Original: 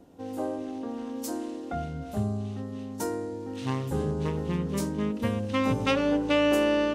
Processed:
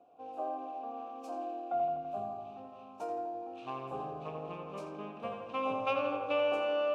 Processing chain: vowel filter a; darkening echo 83 ms, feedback 76%, low-pass 3400 Hz, level -5 dB; gain +4.5 dB

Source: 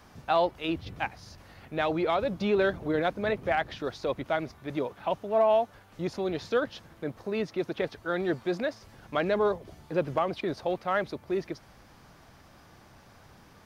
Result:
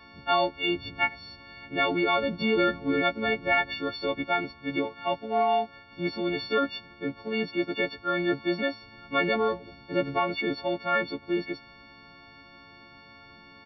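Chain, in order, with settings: frequency quantiser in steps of 4 st; small resonant body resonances 270/1300/2200/3200 Hz, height 7 dB, ringing for 25 ms; downsampling 11025 Hz; gain -1.5 dB

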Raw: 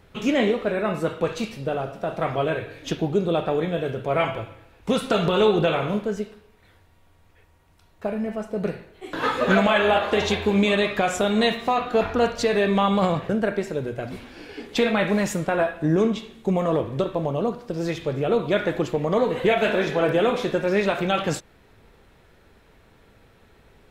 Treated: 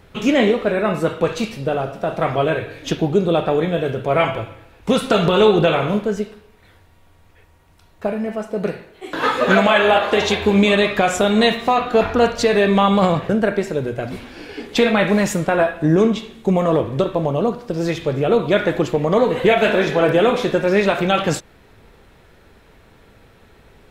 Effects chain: 8.12–10.42 low shelf 140 Hz -8.5 dB; gain +5.5 dB

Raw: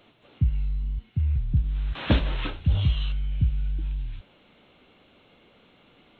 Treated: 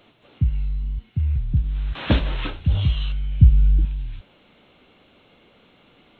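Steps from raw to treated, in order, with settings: 3.41–3.85 low shelf 320 Hz +9.5 dB; gain +2.5 dB

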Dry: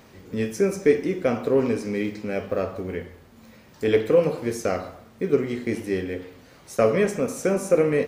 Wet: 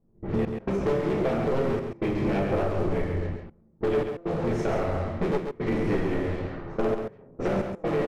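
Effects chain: cycle switcher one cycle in 3, muted; speakerphone echo 0.25 s, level -19 dB; shoebox room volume 49 m³, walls mixed, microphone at 1.2 m; compressor 6:1, threshold -28 dBFS, peak gain reduction 20.5 dB; tape spacing loss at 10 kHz 21 dB; sample leveller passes 2; step gate ".x.xxxxx.xxxxxx." 67 bpm -24 dB; low-pass opened by the level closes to 340 Hz, open at -24 dBFS; on a send: echo 0.136 s -6.5 dB

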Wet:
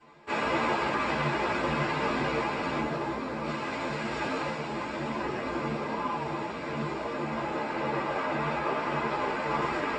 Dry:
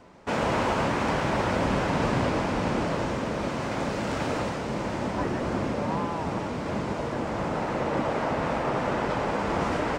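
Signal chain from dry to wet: 2.8–3.46 median filter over 15 samples; air absorption 56 m; notch 6400 Hz, Q 7.7; reverb RT60 0.25 s, pre-delay 3 ms, DRR -4.5 dB; ensemble effect; gain -4.5 dB

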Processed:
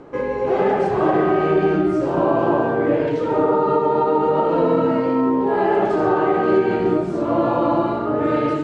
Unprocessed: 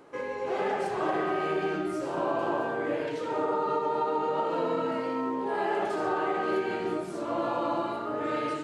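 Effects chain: LPF 8400 Hz 24 dB/oct; tilt -3 dB/oct; gain +8.5 dB

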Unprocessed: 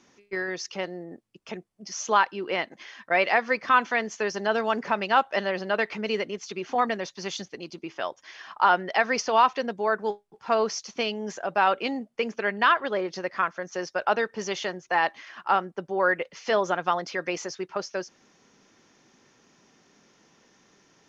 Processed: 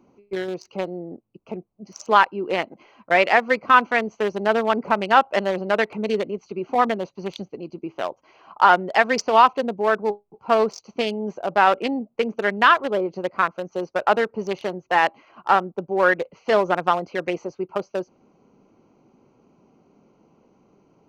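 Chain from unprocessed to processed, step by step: Wiener smoothing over 25 samples; gain +6 dB

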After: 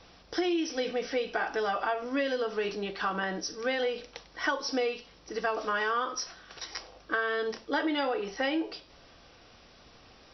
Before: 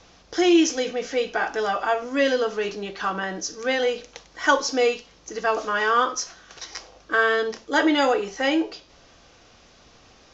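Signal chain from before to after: compressor 12:1, threshold -23 dBFS, peak gain reduction 11 dB; brick-wall FIR low-pass 5900 Hz; gain -2.5 dB

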